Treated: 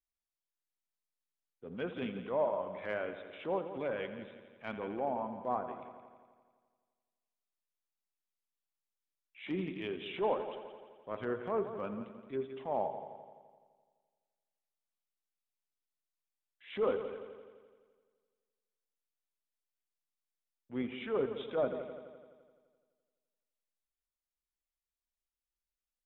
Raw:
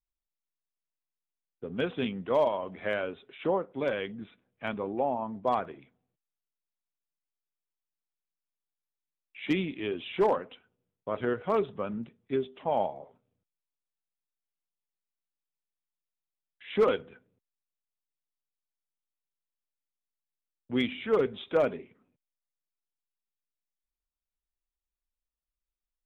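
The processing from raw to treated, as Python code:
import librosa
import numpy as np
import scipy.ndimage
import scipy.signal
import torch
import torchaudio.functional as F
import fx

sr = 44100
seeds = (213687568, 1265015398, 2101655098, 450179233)

y = fx.low_shelf(x, sr, hz=340.0, db=-3.0)
y = fx.env_lowpass_down(y, sr, base_hz=1100.0, full_db=-24.5)
y = fx.echo_heads(y, sr, ms=85, heads='first and second', feedback_pct=57, wet_db=-14.0)
y = fx.transient(y, sr, attack_db=-7, sustain_db=-2)
y = F.gain(torch.from_numpy(y), -3.5).numpy()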